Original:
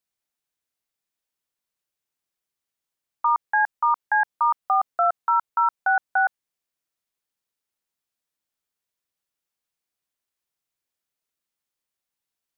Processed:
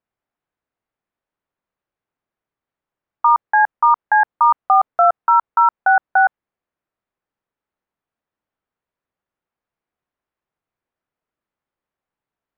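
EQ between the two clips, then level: LPF 1500 Hz 12 dB/oct; +8.5 dB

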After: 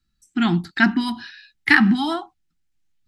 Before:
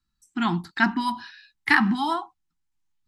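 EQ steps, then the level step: bell 1000 Hz -12.5 dB 0.56 oct; high shelf 6700 Hz -6.5 dB; +6.5 dB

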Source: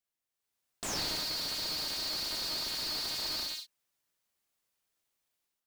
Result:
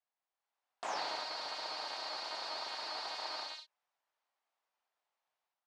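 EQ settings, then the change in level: band-pass 800 Hz, Q 2.1; air absorption 86 m; tilt +3.5 dB/oct; +8.5 dB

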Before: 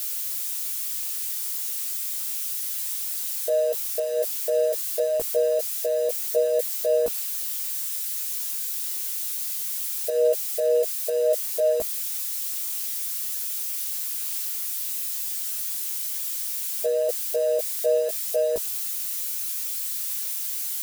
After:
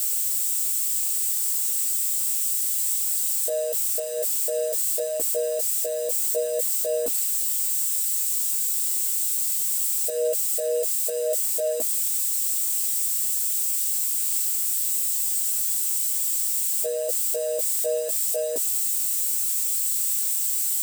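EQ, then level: tilt +2 dB/oct; bell 280 Hz +14 dB 0.61 oct; bell 8000 Hz +12.5 dB 0.23 oct; -4.0 dB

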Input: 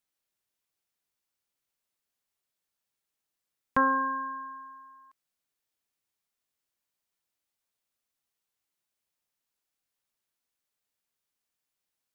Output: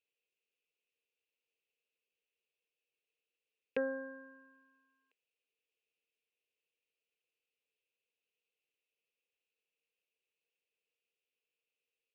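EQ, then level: double band-pass 1100 Hz, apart 2.5 oct; +8.0 dB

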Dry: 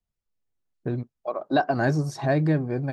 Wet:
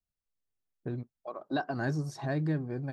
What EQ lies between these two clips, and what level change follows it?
dynamic EQ 2300 Hz, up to -5 dB, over -53 dBFS, Q 4.9; dynamic EQ 620 Hz, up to -5 dB, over -35 dBFS, Q 1.6; -7.5 dB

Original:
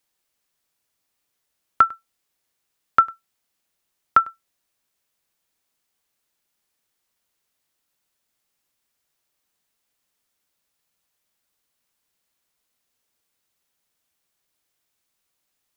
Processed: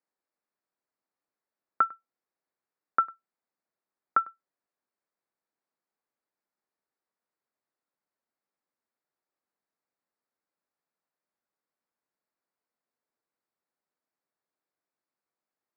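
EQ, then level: running mean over 14 samples; HPF 210 Hz 12 dB/oct; -6.0 dB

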